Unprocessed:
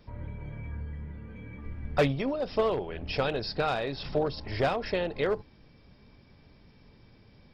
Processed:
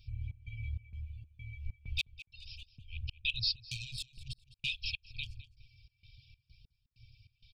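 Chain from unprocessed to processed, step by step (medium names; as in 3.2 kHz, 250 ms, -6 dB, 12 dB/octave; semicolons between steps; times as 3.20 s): 3.55–4.40 s: self-modulated delay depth 0.16 ms; FFT band-reject 130–2300 Hz; reverb removal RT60 0.61 s; 2.26–2.92 s: compression, threshold -46 dBFS, peak gain reduction 7 dB; trance gate "xx.xx.xx.xx.x.." 97 bpm -60 dB; feedback delay 208 ms, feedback 21%, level -17.5 dB; sweeping bell 0.73 Hz 250–3800 Hz +8 dB; trim +1.5 dB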